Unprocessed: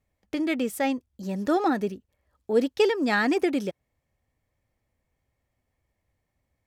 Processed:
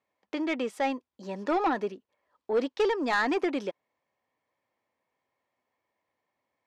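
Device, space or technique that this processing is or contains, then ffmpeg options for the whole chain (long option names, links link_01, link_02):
intercom: -af "highpass=330,lowpass=4600,equalizer=frequency=1000:width_type=o:width=0.34:gain=8,asoftclip=type=tanh:threshold=-19dB"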